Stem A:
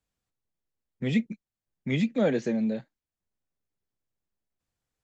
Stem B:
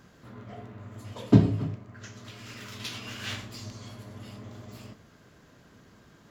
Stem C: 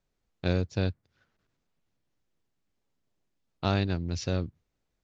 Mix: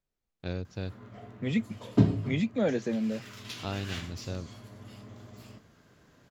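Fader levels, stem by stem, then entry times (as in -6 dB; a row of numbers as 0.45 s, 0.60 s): -3.0 dB, -4.0 dB, -8.0 dB; 0.40 s, 0.65 s, 0.00 s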